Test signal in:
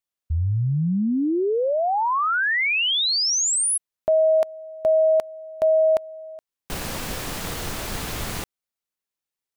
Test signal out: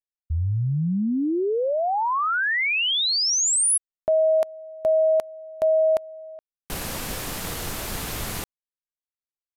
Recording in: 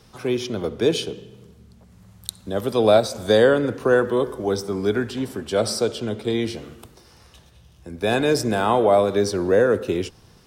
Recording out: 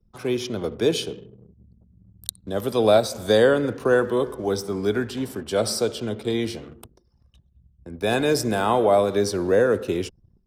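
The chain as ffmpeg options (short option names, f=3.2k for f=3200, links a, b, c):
-af "highshelf=f=12k:g=9.5,aresample=32000,aresample=44100,anlmdn=0.1,volume=-1.5dB"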